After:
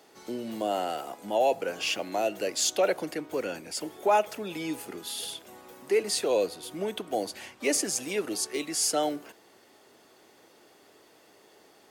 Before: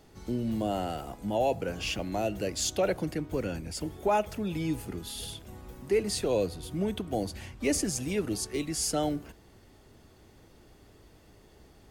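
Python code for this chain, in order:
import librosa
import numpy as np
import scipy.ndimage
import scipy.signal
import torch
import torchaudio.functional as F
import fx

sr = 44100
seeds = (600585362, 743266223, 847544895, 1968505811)

y = scipy.signal.sosfilt(scipy.signal.butter(2, 400.0, 'highpass', fs=sr, output='sos'), x)
y = y * 10.0 ** (4.0 / 20.0)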